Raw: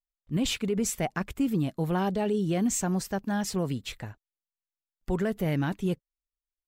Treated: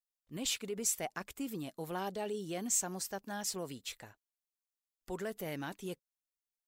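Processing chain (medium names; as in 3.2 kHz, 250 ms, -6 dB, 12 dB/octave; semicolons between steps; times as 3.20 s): tone controls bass -12 dB, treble +8 dB; trim -8 dB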